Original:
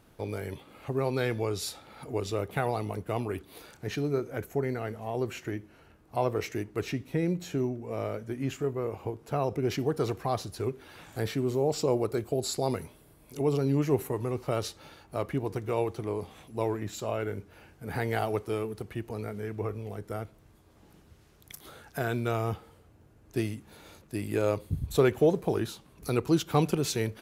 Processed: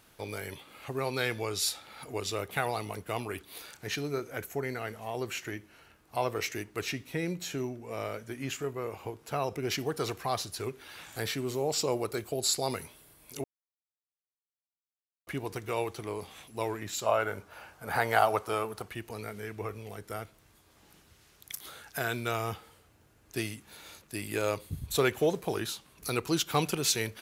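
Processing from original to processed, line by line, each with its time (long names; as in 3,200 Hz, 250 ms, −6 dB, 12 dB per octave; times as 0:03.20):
0:13.44–0:15.27: silence
0:17.06–0:18.88: flat-topped bell 880 Hz +9 dB
whole clip: tilt shelving filter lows −6.5 dB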